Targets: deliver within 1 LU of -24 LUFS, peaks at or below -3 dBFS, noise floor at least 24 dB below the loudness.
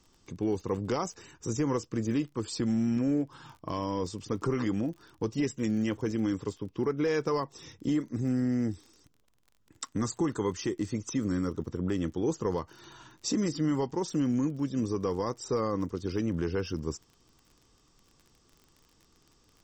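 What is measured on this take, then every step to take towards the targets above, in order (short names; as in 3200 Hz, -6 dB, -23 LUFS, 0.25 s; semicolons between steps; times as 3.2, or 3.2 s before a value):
ticks 32/s; loudness -31.5 LUFS; peak -19.0 dBFS; loudness target -24.0 LUFS
-> de-click; gain +7.5 dB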